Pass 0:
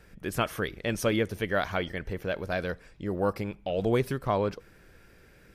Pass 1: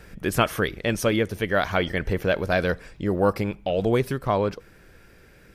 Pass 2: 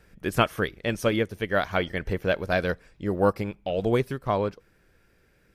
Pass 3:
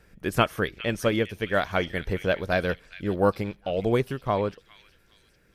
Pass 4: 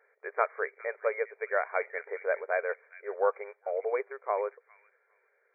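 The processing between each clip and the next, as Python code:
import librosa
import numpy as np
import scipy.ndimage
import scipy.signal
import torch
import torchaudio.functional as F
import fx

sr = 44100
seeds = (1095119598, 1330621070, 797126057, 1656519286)

y1 = fx.rider(x, sr, range_db=4, speed_s=0.5)
y1 = y1 * librosa.db_to_amplitude(6.0)
y2 = fx.upward_expand(y1, sr, threshold_db=-38.0, expansion=1.5)
y3 = fx.echo_stepped(y2, sr, ms=406, hz=2700.0, octaves=0.7, feedback_pct=70, wet_db=-10.0)
y4 = fx.brickwall_bandpass(y3, sr, low_hz=390.0, high_hz=2400.0)
y4 = y4 * librosa.db_to_amplitude(-4.0)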